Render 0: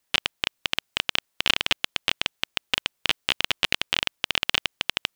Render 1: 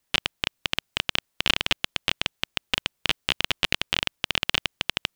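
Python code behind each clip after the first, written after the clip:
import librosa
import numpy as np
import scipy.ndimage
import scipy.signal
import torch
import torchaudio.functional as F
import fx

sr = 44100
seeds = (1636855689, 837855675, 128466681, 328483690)

y = fx.low_shelf(x, sr, hz=260.0, db=7.0)
y = y * librosa.db_to_amplitude(-1.0)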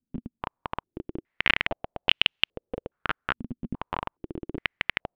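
y = fx.filter_held_lowpass(x, sr, hz=2.4, low_hz=240.0, high_hz=2900.0)
y = y * librosa.db_to_amplitude(-3.0)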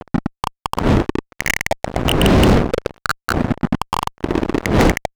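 y = fx.dmg_wind(x, sr, seeds[0], corner_hz=320.0, level_db=-34.0)
y = fx.fuzz(y, sr, gain_db=34.0, gate_db=-37.0)
y = y * librosa.db_to_amplitude(4.5)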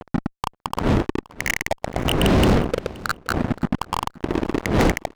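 y = fx.echo_feedback(x, sr, ms=524, feedback_pct=19, wet_db=-21.0)
y = y * librosa.db_to_amplitude(-4.5)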